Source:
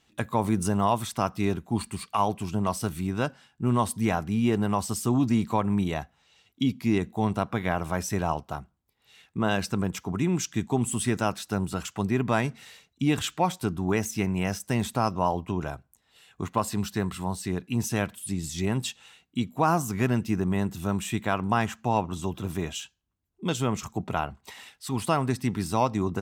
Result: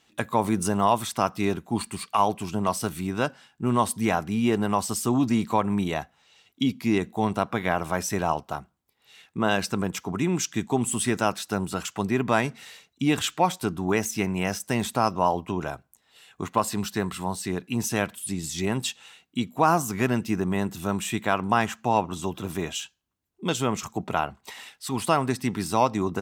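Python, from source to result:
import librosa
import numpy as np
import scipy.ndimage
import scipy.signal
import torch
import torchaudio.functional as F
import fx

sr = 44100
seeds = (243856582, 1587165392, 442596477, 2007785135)

y = fx.low_shelf(x, sr, hz=130.0, db=-11.5)
y = y * librosa.db_to_amplitude(3.5)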